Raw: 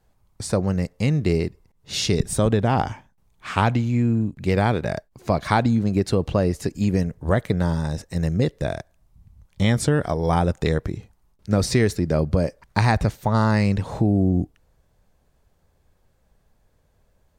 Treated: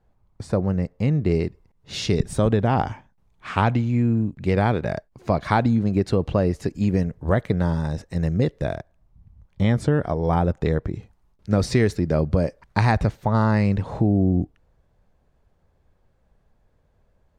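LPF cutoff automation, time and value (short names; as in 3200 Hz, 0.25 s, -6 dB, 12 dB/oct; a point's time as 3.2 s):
LPF 6 dB/oct
1300 Hz
from 1.31 s 3000 Hz
from 8.75 s 1500 Hz
from 10.94 s 3700 Hz
from 13.07 s 2200 Hz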